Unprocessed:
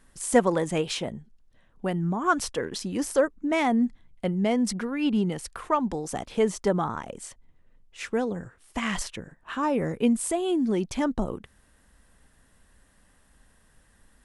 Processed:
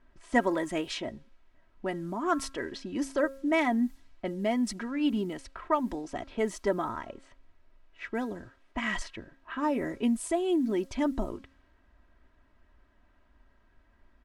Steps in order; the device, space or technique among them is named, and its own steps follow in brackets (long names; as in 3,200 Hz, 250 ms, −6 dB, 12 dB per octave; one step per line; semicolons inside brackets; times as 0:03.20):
high-shelf EQ 6,100 Hz −4.5 dB
hum removal 270.8 Hz, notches 6
cassette deck with a dynamic noise filter (white noise bed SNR 33 dB; low-pass that shuts in the quiet parts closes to 1,600 Hz, open at −22 dBFS)
comb filter 3.1 ms, depth 62%
dynamic equaliser 1,900 Hz, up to +5 dB, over −48 dBFS, Q 4.1
level −5 dB